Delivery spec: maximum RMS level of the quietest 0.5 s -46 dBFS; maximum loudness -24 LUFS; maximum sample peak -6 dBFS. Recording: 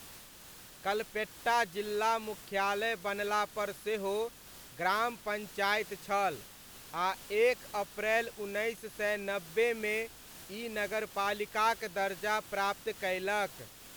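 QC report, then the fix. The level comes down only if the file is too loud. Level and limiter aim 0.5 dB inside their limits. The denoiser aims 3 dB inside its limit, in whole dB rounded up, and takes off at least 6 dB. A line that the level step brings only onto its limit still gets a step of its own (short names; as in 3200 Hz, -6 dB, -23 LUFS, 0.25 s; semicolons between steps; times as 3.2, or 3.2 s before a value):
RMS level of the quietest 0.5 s -52 dBFS: OK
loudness -33.5 LUFS: OK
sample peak -16.5 dBFS: OK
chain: none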